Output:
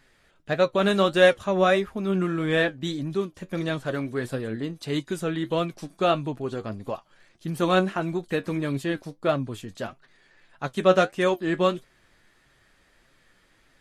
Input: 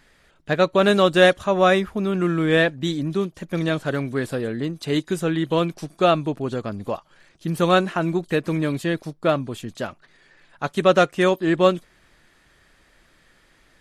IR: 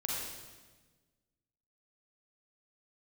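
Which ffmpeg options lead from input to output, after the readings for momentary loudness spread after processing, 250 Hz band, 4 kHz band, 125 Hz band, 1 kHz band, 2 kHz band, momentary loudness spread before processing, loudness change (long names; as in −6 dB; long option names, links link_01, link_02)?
14 LU, −4.5 dB, −4.0 dB, −4.5 dB, −4.5 dB, −4.0 dB, 13 LU, −4.0 dB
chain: -af "flanger=delay=7.3:depth=3.5:regen=58:speed=1.6:shape=sinusoidal"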